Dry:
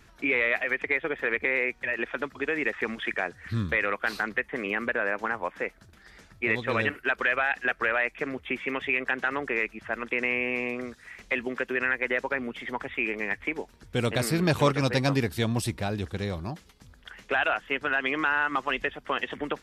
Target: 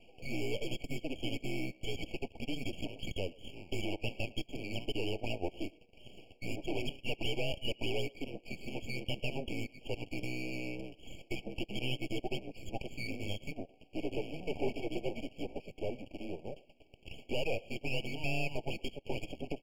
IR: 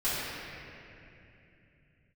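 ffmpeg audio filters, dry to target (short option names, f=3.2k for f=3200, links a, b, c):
-filter_complex "[0:a]asplit=2[a][b];[b]acompressor=threshold=-42dB:ratio=6,volume=2dB[c];[a][c]amix=inputs=2:normalize=0,asettb=1/sr,asplit=3[d][e][f];[d]atrim=end=13.034[g];[e]atrim=start=13.03:end=13.5,asetpts=PTS-STARTPTS,afade=t=in:d=0.004:c=qsin,afade=t=out:st=0.466:d=0.004:c=qsin,asplit=2[h][i];[i]adelay=29,volume=-6dB[j];[h][j]amix=inputs=2:normalize=0,atrim=end_sample=20727[k];[f]atrim=start=13.496[l];[g][k]acrossfade=d=0.004:c1=hsin:c2=qsin[m];[m][l]acrossfade=d=0.004:c1=qsin:c2=hsin,asoftclip=type=tanh:threshold=-21dB,highpass=f=520:t=q:w=0.5412,highpass=f=520:t=q:w=1.307,lowpass=f=2.2k:t=q:w=0.5176,lowpass=f=2.2k:t=q:w=0.7071,lowpass=f=2.2k:t=q:w=1.932,afreqshift=-180,aeval=exprs='max(val(0),0)':c=same,asuperstop=centerf=1100:order=4:qfactor=1,asplit=2[n][o];[o]adelay=110,highpass=300,lowpass=3.4k,asoftclip=type=hard:threshold=-31dB,volume=-21dB[p];[n][p]amix=inputs=2:normalize=0,afftfilt=real='re*eq(mod(floor(b*sr/1024/1100),2),0)':imag='im*eq(mod(floor(b*sr/1024/1100),2),0)':win_size=1024:overlap=0.75,volume=3dB"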